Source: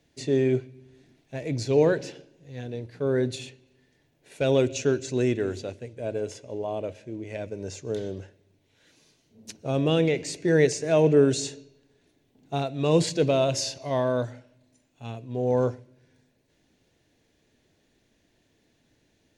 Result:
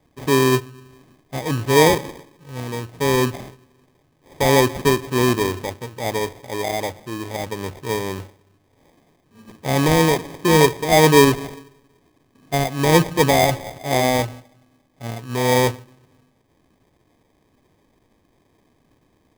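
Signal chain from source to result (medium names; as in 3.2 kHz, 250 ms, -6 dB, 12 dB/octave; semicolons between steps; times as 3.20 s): resampled via 8 kHz; sample-rate reducer 1.4 kHz, jitter 0%; trim +6.5 dB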